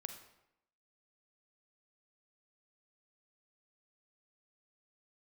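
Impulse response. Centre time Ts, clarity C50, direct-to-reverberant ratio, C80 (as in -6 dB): 19 ms, 7.5 dB, 6.5 dB, 10.0 dB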